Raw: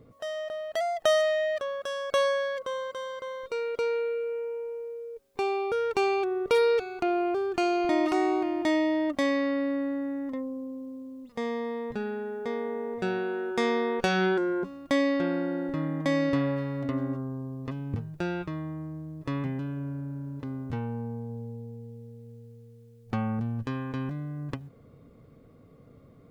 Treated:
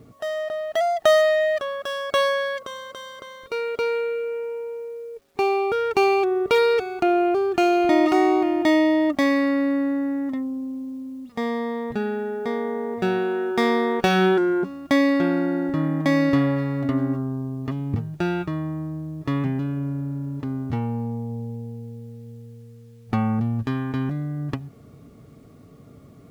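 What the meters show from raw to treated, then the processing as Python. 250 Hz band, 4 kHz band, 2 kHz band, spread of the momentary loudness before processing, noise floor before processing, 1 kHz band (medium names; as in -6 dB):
+7.5 dB, +5.5 dB, +6.0 dB, 13 LU, -54 dBFS, +7.0 dB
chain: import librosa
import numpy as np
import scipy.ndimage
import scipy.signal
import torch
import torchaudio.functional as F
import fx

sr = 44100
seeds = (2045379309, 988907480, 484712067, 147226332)

y = scipy.signal.medfilt(x, 5)
y = fx.notch_comb(y, sr, f0_hz=510.0)
y = fx.quant_dither(y, sr, seeds[0], bits=12, dither='none')
y = y * librosa.db_to_amplitude(7.5)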